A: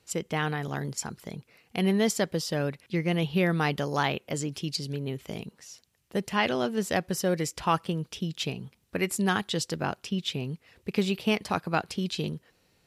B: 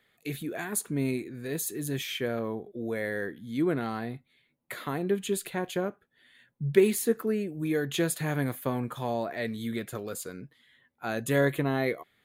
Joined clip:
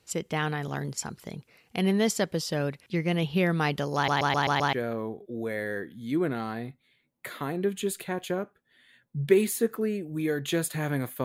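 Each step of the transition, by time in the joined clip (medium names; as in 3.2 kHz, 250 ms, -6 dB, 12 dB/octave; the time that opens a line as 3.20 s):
A
3.95 s: stutter in place 0.13 s, 6 plays
4.73 s: go over to B from 2.19 s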